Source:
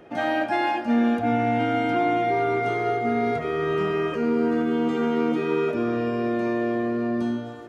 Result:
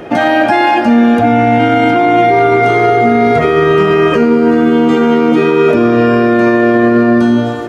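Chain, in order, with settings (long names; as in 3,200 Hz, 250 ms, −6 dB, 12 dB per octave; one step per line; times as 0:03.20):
0:06.02–0:07.28: parametric band 1,500 Hz +7 dB 0.44 octaves
boost into a limiter +21 dB
level −1 dB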